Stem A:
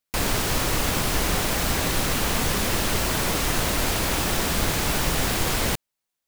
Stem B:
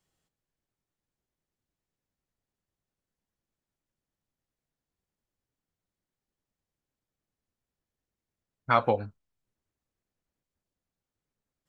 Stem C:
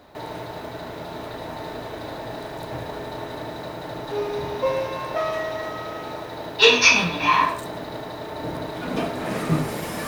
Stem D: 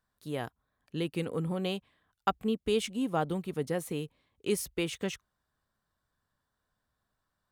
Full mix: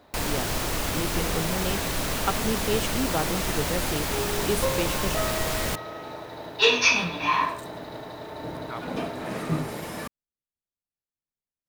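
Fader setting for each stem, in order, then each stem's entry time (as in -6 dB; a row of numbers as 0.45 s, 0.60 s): -4.5 dB, -14.5 dB, -5.0 dB, +1.5 dB; 0.00 s, 0.00 s, 0.00 s, 0.00 s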